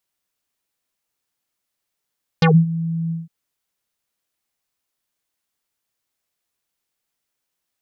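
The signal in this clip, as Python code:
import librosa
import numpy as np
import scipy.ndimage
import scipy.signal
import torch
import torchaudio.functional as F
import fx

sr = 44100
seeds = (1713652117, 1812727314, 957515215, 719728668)

y = fx.sub_voice(sr, note=52, wave='square', cutoff_hz=180.0, q=3.4, env_oct=5.0, env_s=0.12, attack_ms=3.6, decay_s=0.23, sustain_db=-20.0, release_s=0.17, note_s=0.69, slope=24)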